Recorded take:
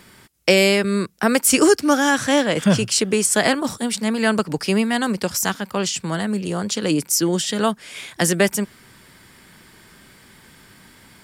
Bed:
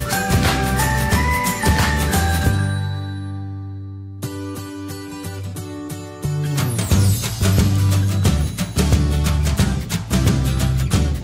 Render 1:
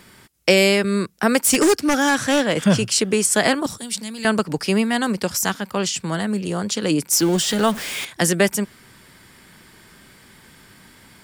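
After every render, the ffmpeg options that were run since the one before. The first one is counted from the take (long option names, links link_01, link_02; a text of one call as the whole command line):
ffmpeg -i in.wav -filter_complex "[0:a]asplit=3[link_01][link_02][link_03];[link_01]afade=type=out:start_time=1.42:duration=0.02[link_04];[link_02]aeval=exprs='0.316*(abs(mod(val(0)/0.316+3,4)-2)-1)':channel_layout=same,afade=type=in:start_time=1.42:duration=0.02,afade=type=out:start_time=2.65:duration=0.02[link_05];[link_03]afade=type=in:start_time=2.65:duration=0.02[link_06];[link_04][link_05][link_06]amix=inputs=3:normalize=0,asettb=1/sr,asplit=3[link_07][link_08][link_09];[link_07]atrim=end=3.664[link_10];[link_08]atrim=start=3.66:end=4.25,asetpts=PTS-STARTPTS,afade=type=in:duration=0.004:curve=qsin,afade=type=out:start_time=0.586:duration=0.004:curve=qsin,acrossover=split=140|3000[link_11][link_12][link_13];[link_12]acompressor=threshold=-36dB:ratio=5:attack=3.2:release=140:knee=2.83:detection=peak[link_14];[link_11][link_14][link_13]amix=inputs=3:normalize=0[link_15];[link_09]atrim=start=4.246[link_16];[link_10][link_15]acrossfade=duration=0.004:curve1=hsin:curve2=qsin[link_17];[link_17][link_16]acrossfade=duration=0.004:curve1=qsin:curve2=hsin,asettb=1/sr,asplit=3[link_18][link_19][link_20];[link_18]atrim=end=7.124[link_21];[link_19]atrim=start=7.12:end=8.05,asetpts=PTS-STARTPTS,afade=type=in:duration=0.004:curve=qsin,afade=type=out:start_time=0.926:duration=0.004:curve=qsin,aeval=exprs='val(0)+0.5*0.0531*sgn(val(0))':channel_layout=same[link_22];[link_20]atrim=start=8.046[link_23];[link_21][link_22]acrossfade=duration=0.004:curve1=hsin:curve2=qsin[link_24];[link_24][link_23]acrossfade=duration=0.004:curve1=qsin:curve2=hsin" out.wav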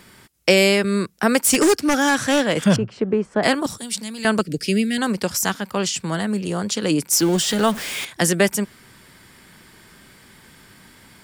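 ffmpeg -i in.wav -filter_complex "[0:a]asettb=1/sr,asplit=3[link_01][link_02][link_03];[link_01]atrim=end=2.764[link_04];[link_02]atrim=start=2.76:end=3.43,asetpts=PTS-STARTPTS,afade=type=in:duration=0.004:curve=qsin,afade=type=out:start_time=0.666:duration=0.004:curve=qsin,lowpass=1100[link_05];[link_03]atrim=start=3.426[link_06];[link_04][link_05]acrossfade=duration=0.004:curve1=hsin:curve2=qsin[link_07];[link_07][link_06]acrossfade=duration=0.004:curve1=qsin:curve2=hsin,asettb=1/sr,asplit=3[link_08][link_09][link_10];[link_08]atrim=end=4.414[link_11];[link_09]atrim=start=4.41:end=4.98,asetpts=PTS-STARTPTS,afade=type=in:duration=0.004:curve=qsin,afade=type=out:start_time=0.566:duration=0.004:curve=qsin,asuperstop=centerf=960:order=4:qfactor=0.62[link_12];[link_10]atrim=start=4.976[link_13];[link_11][link_12]acrossfade=duration=0.004:curve1=hsin:curve2=qsin[link_14];[link_14][link_13]acrossfade=duration=0.004:curve1=qsin:curve2=hsin" out.wav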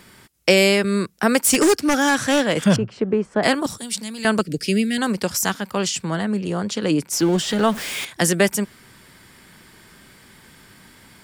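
ffmpeg -i in.wav -filter_complex "[0:a]asettb=1/sr,asplit=3[link_01][link_02][link_03];[link_01]atrim=end=6.044[link_04];[link_02]atrim=start=6.04:end=7.72,asetpts=PTS-STARTPTS,afade=type=in:duration=0.004:curve=qsin,afade=type=out:start_time=1.676:duration=0.004:curve=qsin,aemphasis=mode=reproduction:type=cd[link_05];[link_03]atrim=start=7.716[link_06];[link_04][link_05]acrossfade=duration=0.004:curve1=hsin:curve2=qsin[link_07];[link_07][link_06]acrossfade=duration=0.004:curve1=qsin:curve2=hsin" out.wav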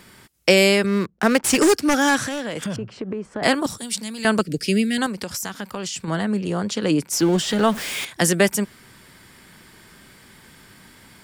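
ffmpeg -i in.wav -filter_complex "[0:a]asettb=1/sr,asplit=3[link_01][link_02][link_03];[link_01]atrim=end=0.864[link_04];[link_02]atrim=start=0.86:end=1.59,asetpts=PTS-STARTPTS,afade=type=in:duration=0.004:curve=qsin,afade=type=out:start_time=0.726:duration=0.004:curve=qsin,adynamicsmooth=sensitivity=6:basefreq=610[link_05];[link_03]atrim=start=1.586[link_06];[link_04][link_05]acrossfade=duration=0.004:curve1=hsin:curve2=qsin[link_07];[link_07][link_06]acrossfade=duration=0.004:curve1=qsin:curve2=hsin,asettb=1/sr,asplit=3[link_08][link_09][link_10];[link_08]atrim=end=2.254[link_11];[link_09]atrim=start=2.25:end=3.42,asetpts=PTS-STARTPTS,afade=type=in:duration=0.004:curve=qsin,afade=type=out:start_time=1.166:duration=0.004:curve=qsin,acompressor=threshold=-24dB:ratio=8:attack=3.2:release=140:knee=1:detection=peak[link_12];[link_10]atrim=start=3.416[link_13];[link_11][link_12]acrossfade=duration=0.004:curve1=hsin:curve2=qsin[link_14];[link_14][link_13]acrossfade=duration=0.004:curve1=qsin:curve2=hsin,asettb=1/sr,asplit=3[link_15][link_16][link_17];[link_15]atrim=end=5.064[link_18];[link_16]atrim=start=5.06:end=6.08,asetpts=PTS-STARTPTS,afade=type=in:duration=0.004:curve=qsin,afade=type=out:start_time=1.016:duration=0.004:curve=qsin,acompressor=threshold=-25dB:ratio=6:attack=3.2:release=140:knee=1:detection=peak[link_19];[link_17]atrim=start=6.076[link_20];[link_18][link_19]acrossfade=duration=0.004:curve1=hsin:curve2=qsin[link_21];[link_21][link_20]acrossfade=duration=0.004:curve1=qsin:curve2=hsin" out.wav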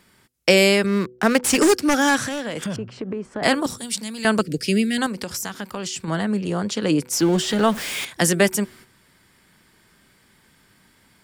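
ffmpeg -i in.wav -af "agate=range=-9dB:threshold=-44dB:ratio=16:detection=peak,bandreject=frequency=124:width_type=h:width=4,bandreject=frequency=248:width_type=h:width=4,bandreject=frequency=372:width_type=h:width=4,bandreject=frequency=496:width_type=h:width=4" out.wav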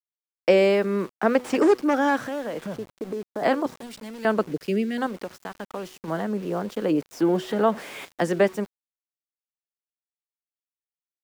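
ffmpeg -i in.wav -af "bandpass=frequency=570:width_type=q:width=0.74:csg=0,aeval=exprs='val(0)*gte(abs(val(0)),0.00891)':channel_layout=same" out.wav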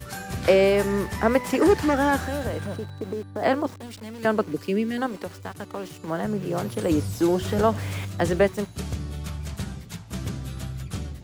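ffmpeg -i in.wav -i bed.wav -filter_complex "[1:a]volume=-15dB[link_01];[0:a][link_01]amix=inputs=2:normalize=0" out.wav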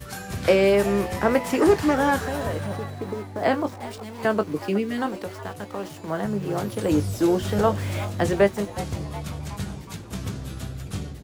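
ffmpeg -i in.wav -filter_complex "[0:a]asplit=2[link_01][link_02];[link_02]adelay=20,volume=-10.5dB[link_03];[link_01][link_03]amix=inputs=2:normalize=0,asplit=6[link_04][link_05][link_06][link_07][link_08][link_09];[link_05]adelay=368,afreqshift=140,volume=-16dB[link_10];[link_06]adelay=736,afreqshift=280,volume=-21dB[link_11];[link_07]adelay=1104,afreqshift=420,volume=-26.1dB[link_12];[link_08]adelay=1472,afreqshift=560,volume=-31.1dB[link_13];[link_09]adelay=1840,afreqshift=700,volume=-36.1dB[link_14];[link_04][link_10][link_11][link_12][link_13][link_14]amix=inputs=6:normalize=0" out.wav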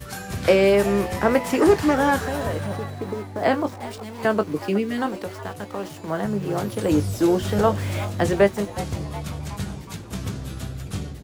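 ffmpeg -i in.wav -af "volume=1.5dB" out.wav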